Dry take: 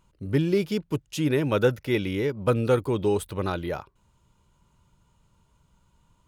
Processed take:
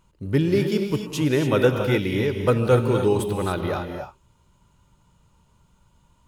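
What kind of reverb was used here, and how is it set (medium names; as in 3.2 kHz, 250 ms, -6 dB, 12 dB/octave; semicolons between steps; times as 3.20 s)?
gated-style reverb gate 310 ms rising, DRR 4 dB; trim +2.5 dB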